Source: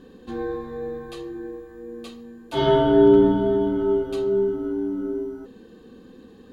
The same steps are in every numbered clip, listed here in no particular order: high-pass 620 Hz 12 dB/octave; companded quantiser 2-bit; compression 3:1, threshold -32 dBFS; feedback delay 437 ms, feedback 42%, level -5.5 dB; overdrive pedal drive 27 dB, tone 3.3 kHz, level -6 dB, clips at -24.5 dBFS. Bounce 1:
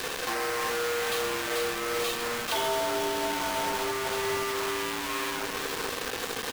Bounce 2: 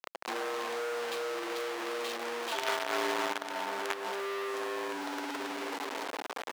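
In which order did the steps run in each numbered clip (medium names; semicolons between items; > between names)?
overdrive pedal > feedback delay > compression > high-pass > companded quantiser; feedback delay > companded quantiser > overdrive pedal > high-pass > compression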